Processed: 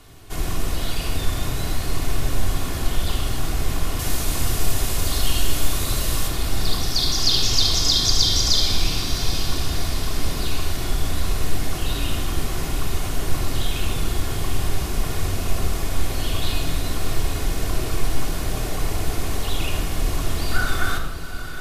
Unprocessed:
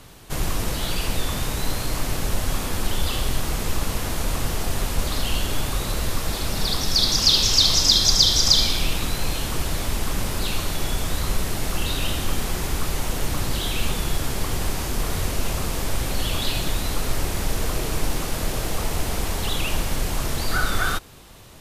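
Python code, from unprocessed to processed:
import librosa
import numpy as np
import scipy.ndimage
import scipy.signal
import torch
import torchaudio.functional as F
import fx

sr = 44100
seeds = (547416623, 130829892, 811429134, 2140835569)

y = fx.high_shelf(x, sr, hz=3600.0, db=8.5, at=(3.99, 6.28))
y = fx.echo_diffused(y, sr, ms=814, feedback_pct=45, wet_db=-10.5)
y = fx.room_shoebox(y, sr, seeds[0], volume_m3=3800.0, walls='furnished', distance_m=3.3)
y = y * 10.0 ** (-4.5 / 20.0)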